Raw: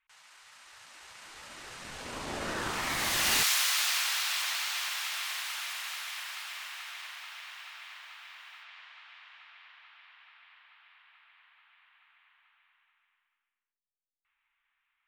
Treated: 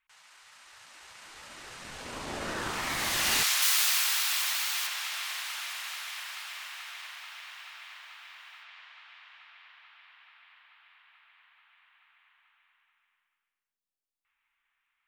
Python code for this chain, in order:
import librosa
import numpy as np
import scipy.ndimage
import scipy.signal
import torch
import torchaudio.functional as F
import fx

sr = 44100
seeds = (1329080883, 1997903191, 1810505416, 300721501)

y = fx.high_shelf(x, sr, hz=8400.0, db=9.5, at=(3.62, 4.87))